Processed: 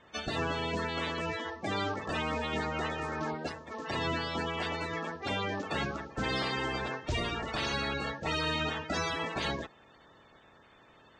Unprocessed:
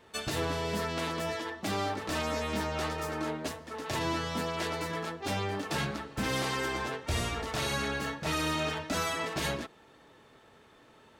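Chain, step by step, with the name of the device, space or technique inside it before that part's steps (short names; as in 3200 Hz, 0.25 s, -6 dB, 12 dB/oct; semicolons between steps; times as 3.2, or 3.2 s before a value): clip after many re-uploads (LPF 6100 Hz 24 dB/oct; bin magnitudes rounded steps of 30 dB)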